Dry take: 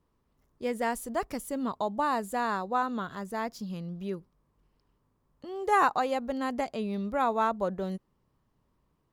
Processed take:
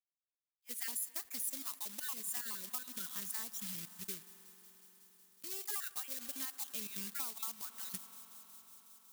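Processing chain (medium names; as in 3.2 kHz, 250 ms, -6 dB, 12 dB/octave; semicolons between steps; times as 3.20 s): random holes in the spectrogram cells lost 39%; companded quantiser 4-bit; RIAA curve recording; feedback echo behind a high-pass 184 ms, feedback 84%, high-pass 4.2 kHz, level -23 dB; on a send at -16 dB: reverberation RT60 5.3 s, pre-delay 44 ms; on the sum: compression 6:1, threshold -33 dBFS, peak gain reduction 14.5 dB; amplifier tone stack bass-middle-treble 6-0-2; attacks held to a fixed rise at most 600 dB/s; trim +13 dB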